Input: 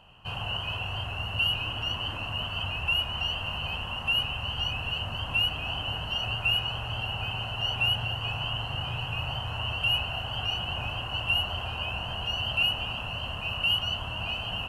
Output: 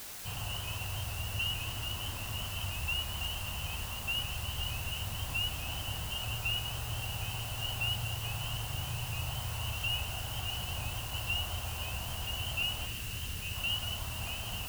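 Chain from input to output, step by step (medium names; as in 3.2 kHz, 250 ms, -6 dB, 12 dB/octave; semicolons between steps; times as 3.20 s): time-frequency box 12.87–13.56 s, 460–1500 Hz -12 dB; bass shelf 150 Hz +8.5 dB; word length cut 6-bit, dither triangular; trim -8.5 dB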